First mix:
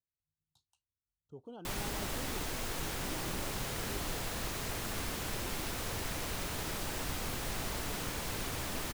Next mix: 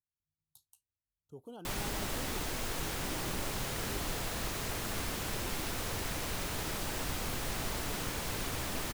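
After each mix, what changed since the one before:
speech: remove distance through air 120 m; reverb: on, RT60 1.1 s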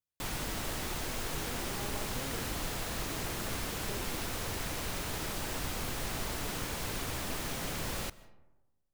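background: entry -1.45 s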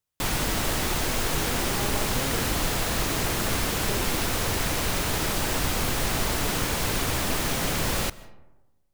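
speech +9.5 dB; background +10.5 dB

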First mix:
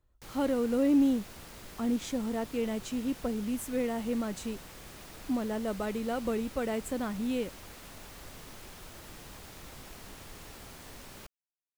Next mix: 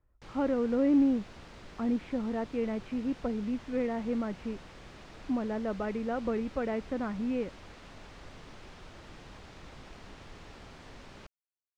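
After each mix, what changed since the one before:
speech: add steep low-pass 2.5 kHz; background: add distance through air 130 m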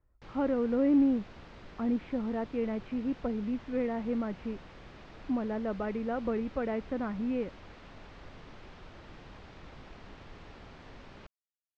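master: add distance through air 120 m

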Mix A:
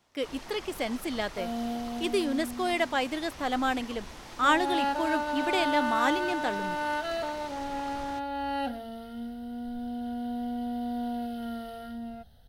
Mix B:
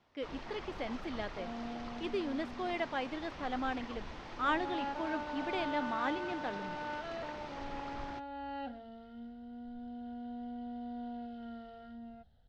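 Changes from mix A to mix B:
speech -7.5 dB; second sound -9.5 dB; master: add distance through air 190 m

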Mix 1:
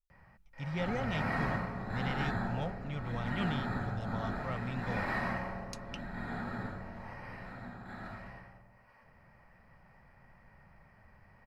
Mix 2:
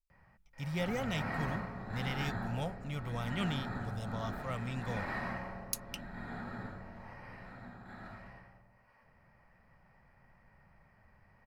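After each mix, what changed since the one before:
speech: remove distance through air 120 m; background -4.0 dB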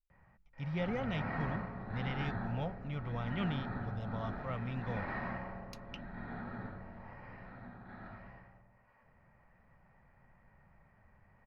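master: add distance through air 270 m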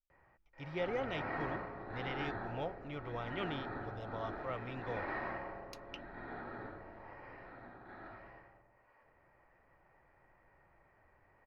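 master: add resonant low shelf 260 Hz -6.5 dB, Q 3

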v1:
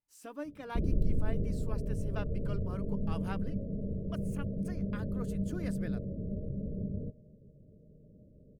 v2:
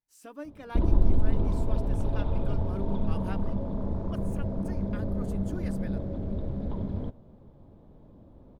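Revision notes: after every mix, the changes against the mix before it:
background: remove rippled Chebyshev low-pass 630 Hz, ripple 9 dB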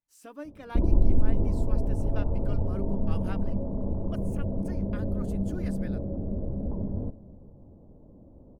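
background: add Chebyshev low-pass 610 Hz, order 2; reverb: on, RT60 2.0 s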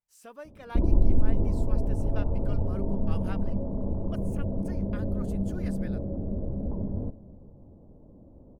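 speech: add peaking EQ 290 Hz -15 dB 0.23 oct

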